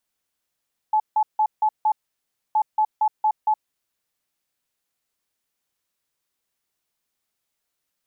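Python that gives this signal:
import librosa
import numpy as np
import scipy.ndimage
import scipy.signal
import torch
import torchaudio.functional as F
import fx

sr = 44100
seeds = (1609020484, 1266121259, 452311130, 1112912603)

y = fx.beep_pattern(sr, wave='sine', hz=860.0, on_s=0.07, off_s=0.16, beeps=5, pause_s=0.63, groups=2, level_db=-15.5)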